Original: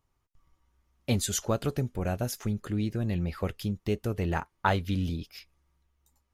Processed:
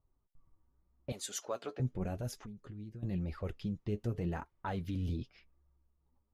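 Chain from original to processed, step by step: 1.12–1.80 s: high-pass 560 Hz 12 dB/octave; level-controlled noise filter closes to 1.2 kHz, open at -25.5 dBFS; tilt shelf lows +4 dB, about 720 Hz; peak limiter -21.5 dBFS, peak gain reduction 9.5 dB; 2.37–3.03 s: compression 16:1, threshold -39 dBFS, peak gain reduction 14 dB; flange 0.88 Hz, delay 1.3 ms, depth 8.7 ms, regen +37%; trim -1.5 dB

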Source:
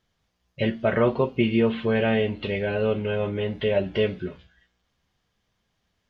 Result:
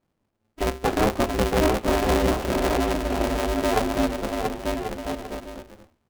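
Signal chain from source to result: median filter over 25 samples; bouncing-ball echo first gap 680 ms, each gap 0.6×, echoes 5; polarity switched at an audio rate 160 Hz

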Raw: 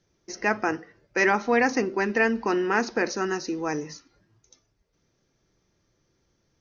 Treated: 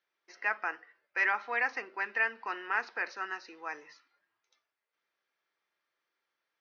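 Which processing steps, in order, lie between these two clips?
high-pass 1.3 kHz 12 dB/octave; distance through air 350 m

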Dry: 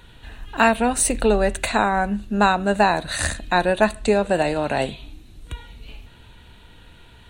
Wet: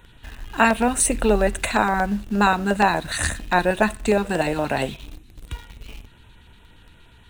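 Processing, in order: LFO notch square 8.5 Hz 600–4600 Hz; in parallel at -7.5 dB: bit crusher 6-bit; on the sum: trim -2.5 dB

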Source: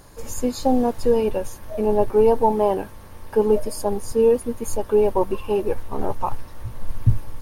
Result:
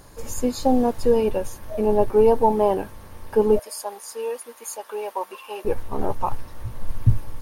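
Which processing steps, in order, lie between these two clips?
3.59–5.65 s: high-pass 910 Hz 12 dB/octave

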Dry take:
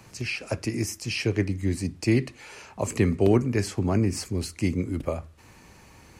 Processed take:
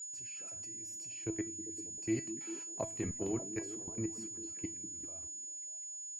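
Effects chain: 1.09–1.76 s: treble shelf 6.2 kHz -10 dB; 2.66–3.37 s: transient shaper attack +10 dB, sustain -4 dB; hum notches 50/100/150/200/250 Hz; level held to a coarse grid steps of 23 dB; 4.23–4.97 s: distance through air 170 m; whistle 6.9 kHz -33 dBFS; feedback comb 330 Hz, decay 0.24 s, harmonics all, mix 80%; repeats whose band climbs or falls 197 ms, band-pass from 230 Hz, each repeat 0.7 oct, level -8 dB; trim -2 dB

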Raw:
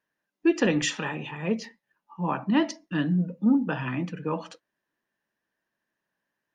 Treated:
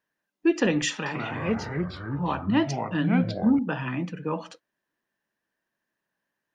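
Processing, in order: 0.92–3.59 s: ever faster or slower copies 138 ms, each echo -4 st, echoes 3

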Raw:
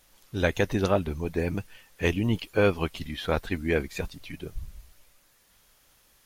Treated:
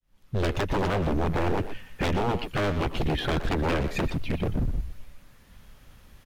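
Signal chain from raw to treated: fade-in on the opening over 0.95 s; peaking EQ 230 Hz +3 dB 0.34 oct; compression 12:1, threshold -26 dBFS, peak gain reduction 10.5 dB; tone controls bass +13 dB, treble -9 dB; wavefolder -26 dBFS; speakerphone echo 120 ms, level -7 dB; trim +6 dB

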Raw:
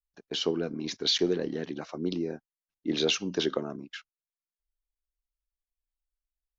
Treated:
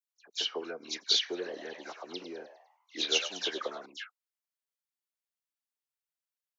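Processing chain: high-pass 670 Hz 12 dB/octave; phase dispersion lows, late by 95 ms, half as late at 2.7 kHz; 1.28–3.86 s: frequency-shifting echo 101 ms, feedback 45%, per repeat +120 Hz, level -11 dB

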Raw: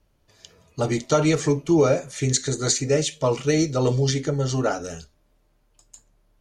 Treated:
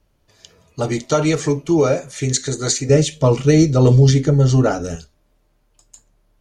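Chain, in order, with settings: 2.89–4.96 s: bass shelf 320 Hz +11 dB; trim +2.5 dB

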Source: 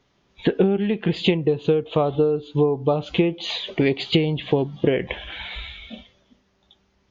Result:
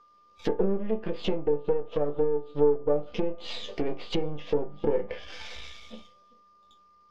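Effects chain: partial rectifier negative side -12 dB; graphic EQ with 31 bands 125 Hz -11 dB, 500 Hz +11 dB, 5 kHz +11 dB; whistle 1.2 kHz -48 dBFS; chord resonator D2 sus4, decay 0.22 s; low-pass that closes with the level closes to 1.1 kHz, closed at -25.5 dBFS; trim +3 dB

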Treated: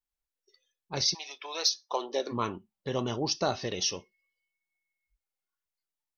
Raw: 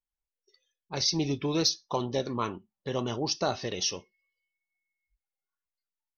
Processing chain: 1.13–2.31 s: high-pass 920 Hz -> 290 Hz 24 dB/octave

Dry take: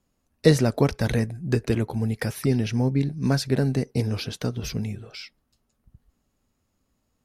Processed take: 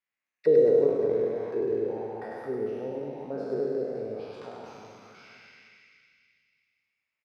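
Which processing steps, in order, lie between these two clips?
spectral sustain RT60 2.42 s; auto-wah 440–2100 Hz, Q 4.2, down, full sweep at -15 dBFS; reverse bouncing-ball echo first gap 100 ms, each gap 1.25×, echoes 5; trim -4 dB

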